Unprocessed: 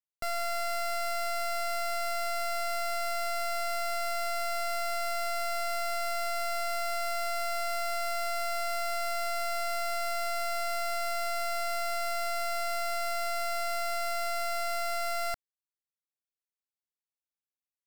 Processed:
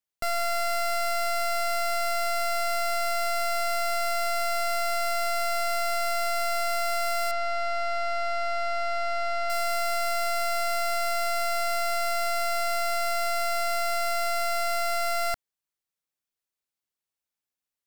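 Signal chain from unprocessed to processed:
0:07.31–0:09.50: high-frequency loss of the air 150 metres
level +5 dB

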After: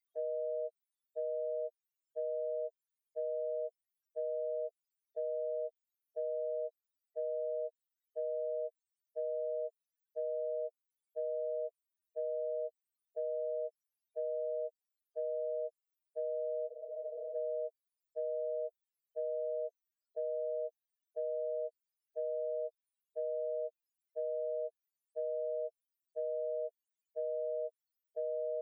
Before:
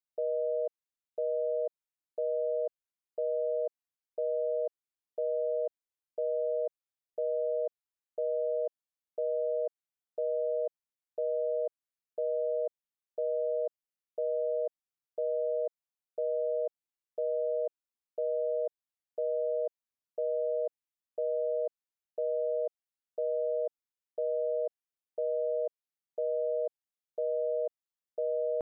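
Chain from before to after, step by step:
spectral peaks only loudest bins 2
spectral tilt +5.5 dB per octave
frozen spectrum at 0:16.70, 0.65 s
multiband upward and downward compressor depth 70%
level +3 dB

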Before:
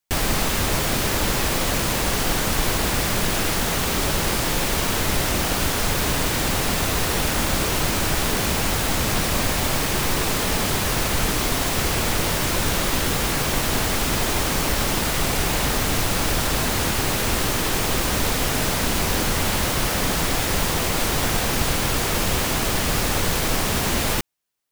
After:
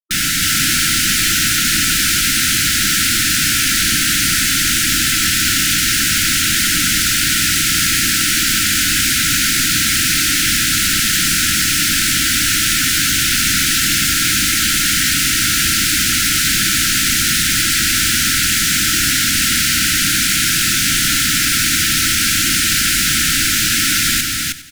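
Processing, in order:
0:13.63–0:15.84: lower of the sound and its delayed copy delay 4.2 ms
first difference
mains-hum notches 50/100/150/200/250/300/350/400/450 Hz
fuzz pedal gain 45 dB, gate −49 dBFS
single-tap delay 314 ms −3 dB
sample-rate reduction 19,000 Hz, jitter 0%
linear-phase brick-wall band-stop 340–1,300 Hz
high-shelf EQ 2,700 Hz −5.5 dB
feedback echo at a low word length 94 ms, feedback 55%, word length 8 bits, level −15 dB
level +2 dB

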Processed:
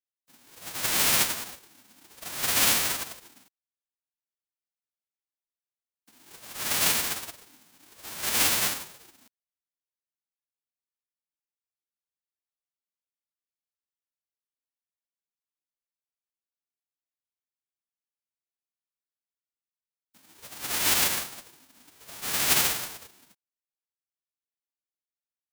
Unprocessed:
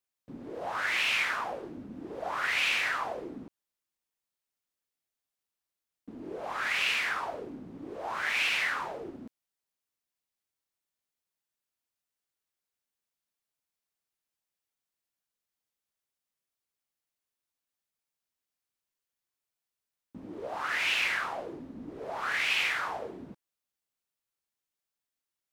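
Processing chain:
spectral envelope flattened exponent 0.1
expander for the loud parts 2.5 to 1, over −41 dBFS
level +8 dB

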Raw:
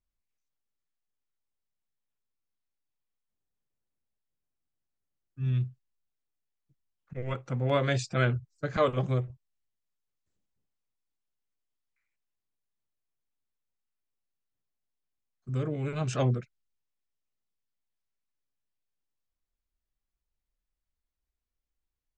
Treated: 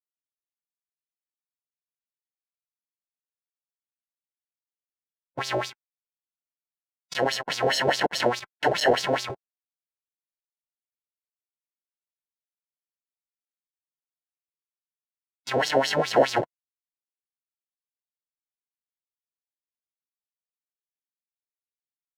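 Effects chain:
sample-rate reduction 1,200 Hz, jitter 0%
fuzz pedal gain 45 dB, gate −52 dBFS
auto-filter band-pass sine 4.8 Hz 510–5,300 Hz
harmonic and percussive parts rebalanced harmonic −7 dB
level +5 dB

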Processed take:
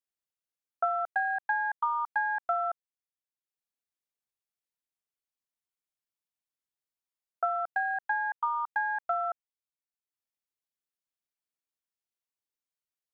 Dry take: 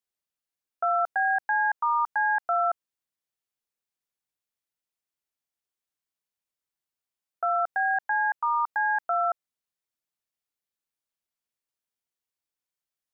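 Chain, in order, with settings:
transient designer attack +7 dB, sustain −7 dB
level −6.5 dB

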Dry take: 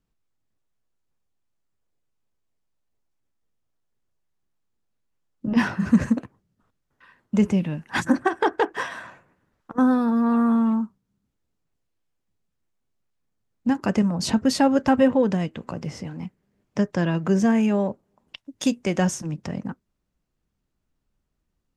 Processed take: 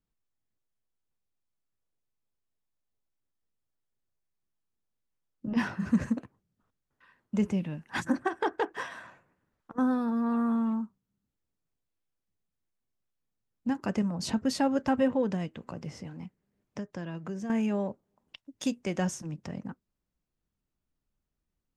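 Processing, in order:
0:16.21–0:17.50: downward compressor 2.5 to 1, threshold −30 dBFS, peak gain reduction 10 dB
level −8 dB

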